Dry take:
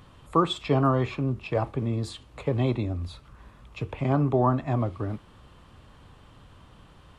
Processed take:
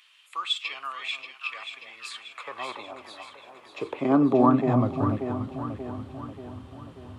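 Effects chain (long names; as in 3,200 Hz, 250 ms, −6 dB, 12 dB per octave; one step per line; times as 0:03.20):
high-pass filter sweep 2,500 Hz → 86 Hz, 0:01.67–0:05.49
delay that swaps between a low-pass and a high-pass 292 ms, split 850 Hz, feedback 73%, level −6 dB
dynamic equaliser 1,200 Hz, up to +4 dB, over −49 dBFS, Q 3.2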